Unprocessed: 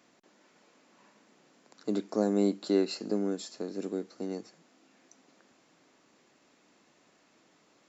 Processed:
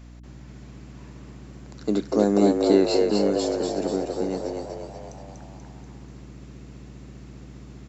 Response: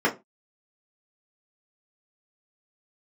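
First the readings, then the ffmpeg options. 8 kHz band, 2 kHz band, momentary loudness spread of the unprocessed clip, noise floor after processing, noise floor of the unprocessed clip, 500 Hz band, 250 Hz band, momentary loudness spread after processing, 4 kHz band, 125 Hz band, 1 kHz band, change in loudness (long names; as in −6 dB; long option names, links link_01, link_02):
can't be measured, +9.5 dB, 11 LU, −44 dBFS, −66 dBFS, +10.5 dB, +8.0 dB, 21 LU, +9.0 dB, +9.5 dB, +12.5 dB, +9.0 dB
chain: -filter_complex "[0:a]aeval=exprs='val(0)+0.00316*(sin(2*PI*60*n/s)+sin(2*PI*2*60*n/s)/2+sin(2*PI*3*60*n/s)/3+sin(2*PI*4*60*n/s)/4+sin(2*PI*5*60*n/s)/5)':channel_layout=same,asplit=9[link_01][link_02][link_03][link_04][link_05][link_06][link_07][link_08][link_09];[link_02]adelay=242,afreqshift=75,volume=-3.5dB[link_10];[link_03]adelay=484,afreqshift=150,volume=-8.5dB[link_11];[link_04]adelay=726,afreqshift=225,volume=-13.6dB[link_12];[link_05]adelay=968,afreqshift=300,volume=-18.6dB[link_13];[link_06]adelay=1210,afreqshift=375,volume=-23.6dB[link_14];[link_07]adelay=1452,afreqshift=450,volume=-28.7dB[link_15];[link_08]adelay=1694,afreqshift=525,volume=-33.7dB[link_16];[link_09]adelay=1936,afreqshift=600,volume=-38.8dB[link_17];[link_01][link_10][link_11][link_12][link_13][link_14][link_15][link_16][link_17]amix=inputs=9:normalize=0,volume=7dB"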